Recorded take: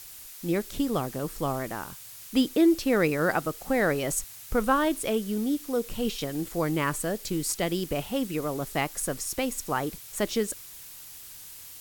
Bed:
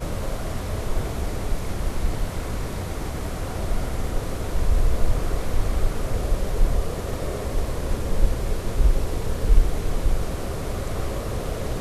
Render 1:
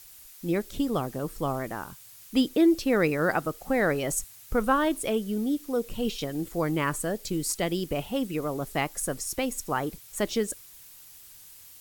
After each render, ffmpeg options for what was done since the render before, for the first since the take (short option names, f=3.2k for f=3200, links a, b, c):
-af "afftdn=nr=6:nf=-45"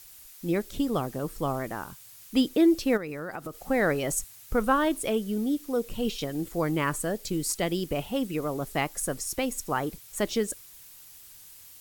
-filter_complex "[0:a]asplit=3[a][b][c];[a]afade=t=out:st=2.96:d=0.02[d];[b]acompressor=threshold=-32dB:ratio=6:attack=3.2:release=140:knee=1:detection=peak,afade=t=in:st=2.96:d=0.02,afade=t=out:st=3.69:d=0.02[e];[c]afade=t=in:st=3.69:d=0.02[f];[d][e][f]amix=inputs=3:normalize=0"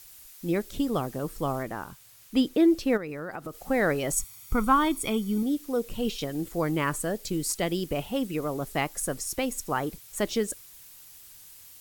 -filter_complex "[0:a]asettb=1/sr,asplit=3[a][b][c];[a]atrim=end=1.634[d];[b]atrim=start=1.63:end=3.48,asetpts=PTS-STARTPTS,afade=t=in:d=0.004:c=qsin,afade=t=out:st=1.846:d=0.004:c=qsin,highshelf=f=4.2k:g=-5[e];[c]atrim=start=3.476[f];[d][e]acrossfade=d=0.004:c1=hsin:c2=qsin[g];[g][f]acrossfade=d=0.004:c1=qsin:c2=hsin,asettb=1/sr,asplit=3[h][i][j];[h]atrim=end=4.134[k];[i]atrim=start=4.13:end=5.43,asetpts=PTS-STARTPTS,afade=t=in:d=0.004:c=qsin,afade=t=out:st=1.296:d=0.004:c=qsin,aecho=1:1:0.9:0.65,atrim=end_sample=57330[l];[j]atrim=start=5.426[m];[k][l]acrossfade=d=0.004:c1=hsin:c2=qsin[n];[n][m]acrossfade=d=0.004:c1=qsin:c2=hsin"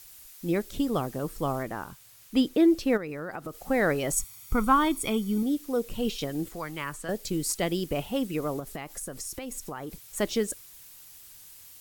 -filter_complex "[0:a]asettb=1/sr,asplit=3[a][b][c];[a]atrim=end=6.494[d];[b]atrim=start=6.49:end=7.09,asetpts=PTS-STARTPTS,afade=t=in:d=0.004:c=qsin,afade=t=out:st=0.596:d=0.004:c=qsin,acrossover=split=95|870|6100[e][f][g][h];[e]acompressor=threshold=-48dB:ratio=3[i];[f]acompressor=threshold=-43dB:ratio=3[j];[g]acompressor=threshold=-33dB:ratio=3[k];[h]acompressor=threshold=-50dB:ratio=3[l];[i][j][k][l]amix=inputs=4:normalize=0[m];[c]atrim=start=7.086[n];[d][m]acrossfade=d=0.004:c1=hsin:c2=qsin[o];[o][n]acrossfade=d=0.004:c1=qsin:c2=hsin,asettb=1/sr,asplit=3[p][q][r];[p]atrim=end=8.594[s];[q]atrim=start=8.59:end=10,asetpts=PTS-STARTPTS,afade=t=in:d=0.004:c=qsin,afade=t=out:st=1.406:d=0.004:c=qsin,acompressor=threshold=-32dB:ratio=12:attack=3.2:release=140:knee=1:detection=peak[t];[r]atrim=start=9.996[u];[s][t]acrossfade=d=0.004:c1=hsin:c2=qsin[v];[v][u]acrossfade=d=0.004:c1=qsin:c2=hsin"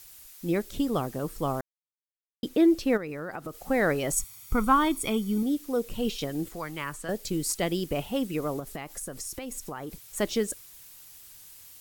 -filter_complex "[0:a]asplit=3[a][b][c];[a]atrim=end=1.61,asetpts=PTS-STARTPTS,afade=t=out:st=1.606:d=0.004:c=hsin[d];[b]atrim=start=1.61:end=2.43,asetpts=PTS-STARTPTS,volume=0[e];[c]atrim=start=2.43,asetpts=PTS-STARTPTS,afade=t=in:d=0.004:c=hsin[f];[d][e][f]concat=n=3:v=0:a=1"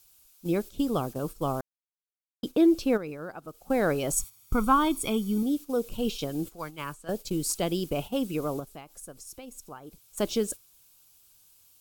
-af "agate=range=-10dB:threshold=-35dB:ratio=16:detection=peak,equalizer=f=1.9k:w=5.6:g=-13"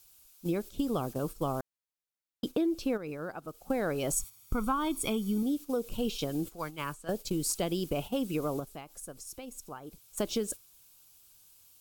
-af "acompressor=threshold=-27dB:ratio=5"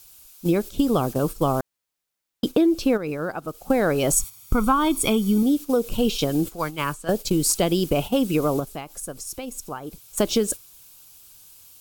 -af "volume=10.5dB"